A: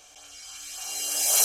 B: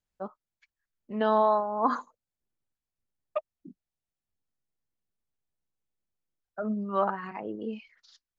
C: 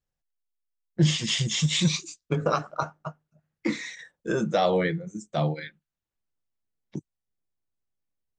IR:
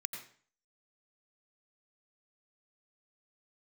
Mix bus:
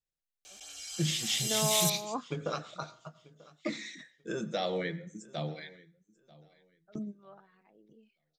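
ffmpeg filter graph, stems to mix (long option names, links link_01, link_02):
-filter_complex "[0:a]acompressor=threshold=-36dB:ratio=2,adelay=450,volume=-3.5dB,asplit=2[link_01][link_02];[link_02]volume=-8dB[link_03];[1:a]adelay=300,volume=-7.5dB[link_04];[2:a]volume=-9.5dB,asplit=4[link_05][link_06][link_07][link_08];[link_06]volume=-9.5dB[link_09];[link_07]volume=-21.5dB[link_10];[link_08]apad=whole_len=383217[link_11];[link_04][link_11]sidechaingate=range=-18dB:threshold=-57dB:ratio=16:detection=peak[link_12];[3:a]atrim=start_sample=2205[link_13];[link_03][link_09]amix=inputs=2:normalize=0[link_14];[link_14][link_13]afir=irnorm=-1:irlink=0[link_15];[link_10]aecho=0:1:939|1878|2817|3756:1|0.22|0.0484|0.0106[link_16];[link_01][link_12][link_05][link_15][link_16]amix=inputs=5:normalize=0,equalizer=frequency=100:width_type=o:width=0.67:gain=-5,equalizer=frequency=1000:width_type=o:width=0.67:gain=-6,equalizer=frequency=4000:width_type=o:width=0.67:gain=5"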